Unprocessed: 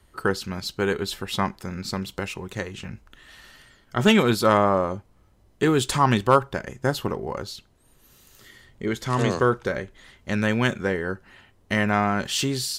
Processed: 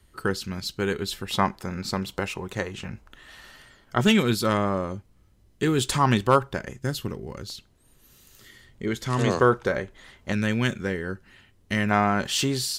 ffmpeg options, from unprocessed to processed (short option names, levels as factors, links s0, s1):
-af "asetnsamples=n=441:p=0,asendcmd='1.31 equalizer g 3;4.01 equalizer g -8.5;5.78 equalizer g -2.5;6.79 equalizer g -14;7.5 equalizer g -4;9.27 equalizer g 2.5;10.32 equalizer g -8;11.91 equalizer g 1',equalizer=f=810:t=o:w=1.9:g=-6"